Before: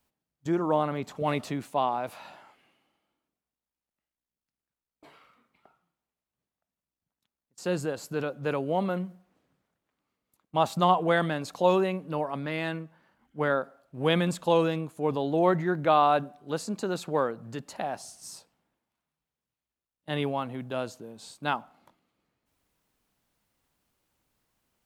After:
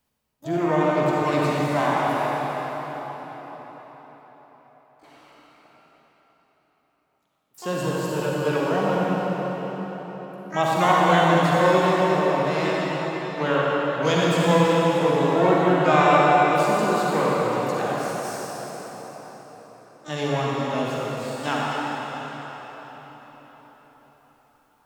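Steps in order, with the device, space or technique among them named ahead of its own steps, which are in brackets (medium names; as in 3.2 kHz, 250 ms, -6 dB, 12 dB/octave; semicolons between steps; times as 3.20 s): shimmer-style reverb (harmony voices +12 st -9 dB; reverberation RT60 5.1 s, pre-delay 40 ms, DRR -5.5 dB)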